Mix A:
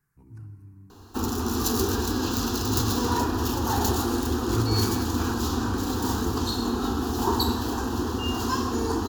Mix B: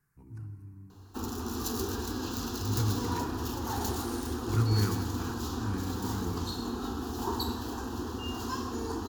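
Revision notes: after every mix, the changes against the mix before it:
background -8.5 dB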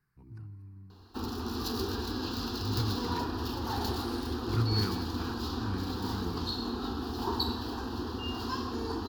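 speech: send -11.0 dB; master: add resonant high shelf 5600 Hz -6 dB, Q 3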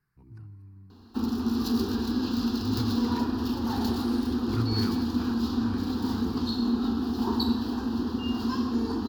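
background: add bell 230 Hz +13.5 dB 0.56 oct

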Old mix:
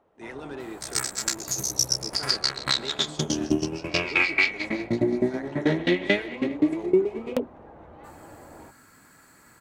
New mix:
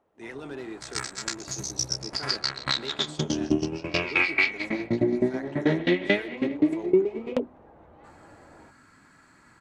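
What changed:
first sound -5.5 dB; second sound: add air absorption 88 m

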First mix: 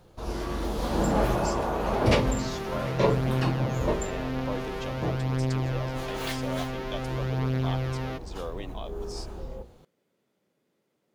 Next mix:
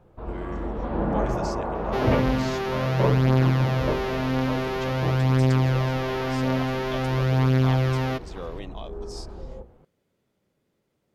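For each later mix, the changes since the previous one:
speech: remove HPF 180 Hz; first sound: add Bessel low-pass 1600 Hz, order 4; second sound +7.5 dB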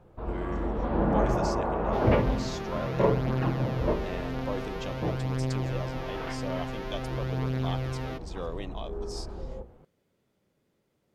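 second sound -10.0 dB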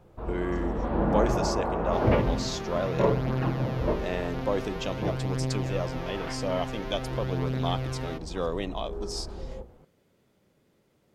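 speech +6.5 dB

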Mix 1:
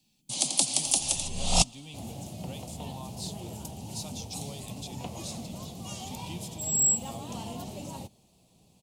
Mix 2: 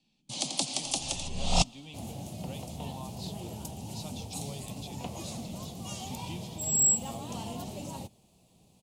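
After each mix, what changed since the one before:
speech: add BPF 140–4000 Hz; first sound: add air absorption 78 m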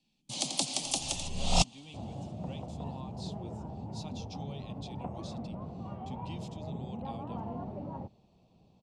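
second sound: add LPF 1500 Hz 24 dB/oct; reverb: off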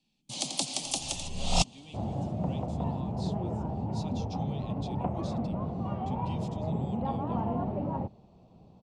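second sound +8.0 dB

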